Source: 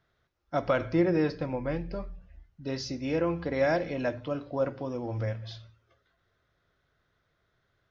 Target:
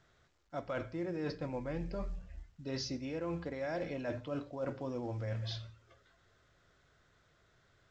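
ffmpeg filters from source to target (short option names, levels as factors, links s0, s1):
-af "areverse,acompressor=threshold=0.0126:ratio=12,areverse,volume=1.41" -ar 16000 -c:a pcm_mulaw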